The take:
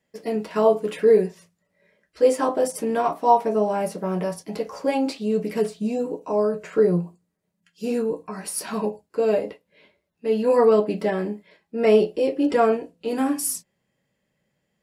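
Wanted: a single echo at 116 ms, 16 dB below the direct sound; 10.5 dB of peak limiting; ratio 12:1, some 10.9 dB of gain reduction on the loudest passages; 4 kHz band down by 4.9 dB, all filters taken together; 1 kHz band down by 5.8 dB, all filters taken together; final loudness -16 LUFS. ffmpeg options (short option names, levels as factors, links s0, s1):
-af "equalizer=f=1000:t=o:g=-8,equalizer=f=4000:t=o:g=-6.5,acompressor=threshold=0.0631:ratio=12,alimiter=level_in=1.41:limit=0.0631:level=0:latency=1,volume=0.708,aecho=1:1:116:0.158,volume=9.44"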